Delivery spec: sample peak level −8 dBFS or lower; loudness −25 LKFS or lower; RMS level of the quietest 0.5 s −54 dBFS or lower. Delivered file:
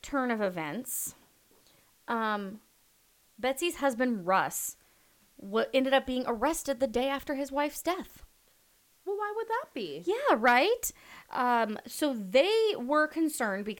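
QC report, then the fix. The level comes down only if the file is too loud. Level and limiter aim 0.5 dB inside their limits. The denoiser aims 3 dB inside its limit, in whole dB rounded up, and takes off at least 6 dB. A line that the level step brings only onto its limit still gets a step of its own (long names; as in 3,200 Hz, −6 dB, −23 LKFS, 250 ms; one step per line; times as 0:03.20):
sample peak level −12.0 dBFS: in spec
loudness −29.5 LKFS: in spec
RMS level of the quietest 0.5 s −66 dBFS: in spec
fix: no processing needed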